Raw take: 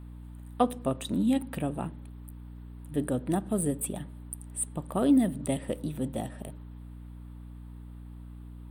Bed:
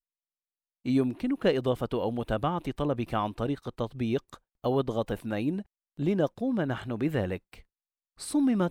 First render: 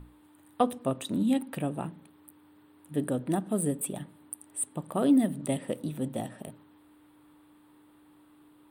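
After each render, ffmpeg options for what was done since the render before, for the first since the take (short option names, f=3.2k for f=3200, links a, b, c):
-af "bandreject=f=60:t=h:w=6,bandreject=f=120:t=h:w=6,bandreject=f=180:t=h:w=6,bandreject=f=240:t=h:w=6"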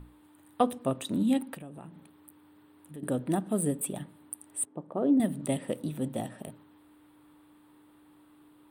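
-filter_complex "[0:a]asettb=1/sr,asplit=3[a][b][c];[a]atrim=end=1.544[d];[b]atrim=start=1.54:end=3.03,asetpts=PTS-STARTPTS,afade=t=in:d=0.004:c=qsin,afade=t=out:st=1.486:d=0.004:c=qsin,acompressor=threshold=-44dB:ratio=3:attack=3.2:release=140:knee=1:detection=peak[e];[c]atrim=start=3.026[f];[d][e]acrossfade=d=0.004:c1=hsin:c2=qsin[g];[g][f]acrossfade=d=0.004:c1=qsin:c2=hsin,asettb=1/sr,asplit=3[h][i][j];[h]atrim=end=4.654[k];[i]atrim=start=4.65:end=5.2,asetpts=PTS-STARTPTS,afade=t=in:d=0.004:c=qsin,afade=t=out:st=0.546:d=0.004:c=qsin,bandpass=f=420:t=q:w=0.9[l];[j]atrim=start=5.196[m];[k][l]acrossfade=d=0.004:c1=hsin:c2=qsin[n];[n][m]acrossfade=d=0.004:c1=qsin:c2=hsin"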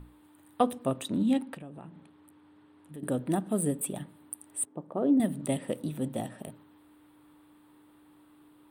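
-filter_complex "[0:a]asettb=1/sr,asplit=3[a][b][c];[a]atrim=end=1.084[d];[b]atrim=start=1.08:end=2.93,asetpts=PTS-STARTPTS,afade=t=in:d=0.004:c=qsin,afade=t=out:st=1.846:d=0.004:c=qsin,adynamicsmooth=sensitivity=8:basefreq=7k[e];[c]atrim=start=2.926[f];[d][e]acrossfade=d=0.004:c1=hsin:c2=qsin[g];[g][f]acrossfade=d=0.004:c1=qsin:c2=hsin"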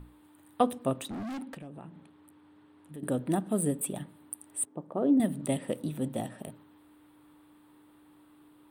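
-filter_complex "[0:a]asettb=1/sr,asplit=3[a][b][c];[a]atrim=end=1.024[d];[b]atrim=start=1.02:end=1.73,asetpts=PTS-STARTPTS,afade=t=in:d=0.004:c=qsin,afade=t=out:st=0.706:d=0.004:c=qsin,volume=35.5dB,asoftclip=hard,volume=-35.5dB[e];[c]atrim=start=1.726[f];[d][e]acrossfade=d=0.004:c1=hsin:c2=qsin[g];[g][f]acrossfade=d=0.004:c1=qsin:c2=hsin"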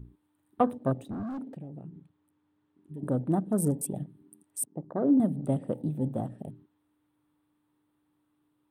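-af "equalizer=f=120:w=1.1:g=6.5,afwtdn=0.01"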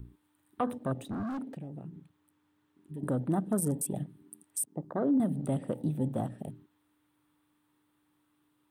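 -filter_complex "[0:a]acrossover=split=680|1000[a][b][c];[c]acontrast=61[d];[a][b][d]amix=inputs=3:normalize=0,alimiter=limit=-20.5dB:level=0:latency=1:release=69"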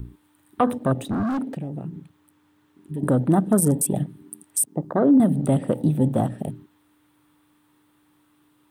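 -af "volume=11dB"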